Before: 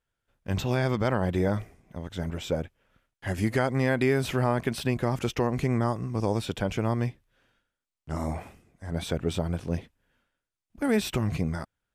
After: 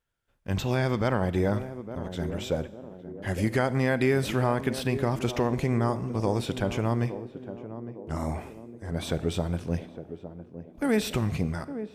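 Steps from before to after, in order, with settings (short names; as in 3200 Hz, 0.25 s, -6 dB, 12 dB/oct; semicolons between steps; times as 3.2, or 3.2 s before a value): narrowing echo 0.859 s, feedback 58%, band-pass 340 Hz, level -9.5 dB; on a send at -16 dB: reverb RT60 0.95 s, pre-delay 35 ms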